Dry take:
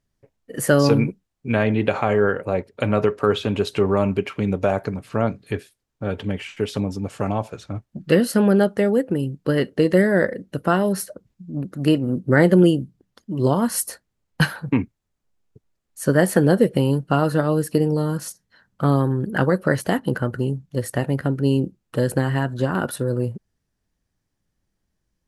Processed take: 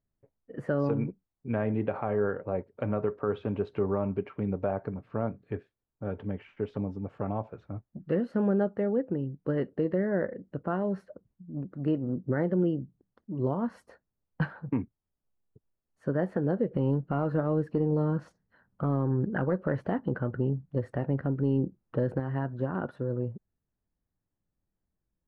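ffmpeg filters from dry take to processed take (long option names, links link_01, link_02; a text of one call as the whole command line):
ffmpeg -i in.wav -filter_complex "[0:a]asettb=1/sr,asplit=3[link_01][link_02][link_03];[link_01]atrim=end=16.714[link_04];[link_02]atrim=start=16.71:end=22.2,asetpts=PTS-STARTPTS,afade=type=in:duration=0.004:curve=qsin,afade=type=out:start_time=5.486:duration=0.004:curve=qsin,acontrast=24[link_05];[link_03]atrim=start=22.196[link_06];[link_04][link_05]acrossfade=duration=0.004:curve1=hsin:curve2=qsin[link_07];[link_07][link_06]acrossfade=duration=0.004:curve1=qsin:curve2=hsin,lowpass=1300,alimiter=limit=-9dB:level=0:latency=1:release=193,volume=-8.5dB" out.wav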